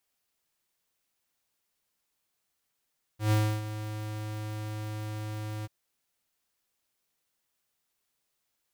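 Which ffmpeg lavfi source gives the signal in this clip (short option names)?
-f lavfi -i "aevalsrc='0.0708*(2*lt(mod(107*t,1),0.5)-1)':d=2.487:s=44100,afade=t=in:d=0.124,afade=t=out:st=0.124:d=0.299:silence=0.224,afade=t=out:st=2.46:d=0.027"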